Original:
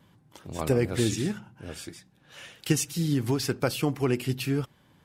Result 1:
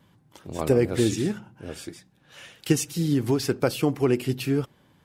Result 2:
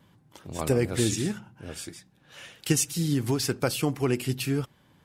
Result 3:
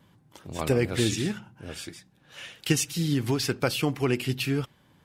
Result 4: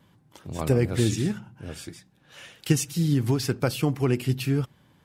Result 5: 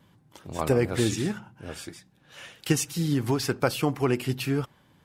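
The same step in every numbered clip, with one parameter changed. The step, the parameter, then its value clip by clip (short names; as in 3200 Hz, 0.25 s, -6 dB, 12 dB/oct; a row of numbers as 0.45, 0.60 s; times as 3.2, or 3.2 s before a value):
dynamic EQ, frequency: 400, 8800, 2900, 120, 1000 Hz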